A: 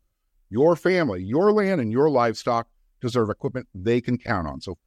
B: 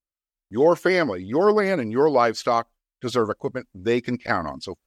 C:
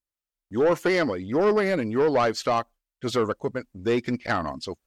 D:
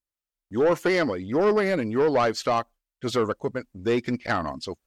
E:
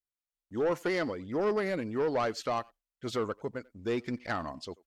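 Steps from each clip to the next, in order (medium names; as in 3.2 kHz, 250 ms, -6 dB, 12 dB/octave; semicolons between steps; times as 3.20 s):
gate with hold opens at -54 dBFS; bass shelf 210 Hz -12 dB; trim +3 dB
saturation -15 dBFS, distortion -14 dB
no audible change
speakerphone echo 90 ms, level -22 dB; trim -8 dB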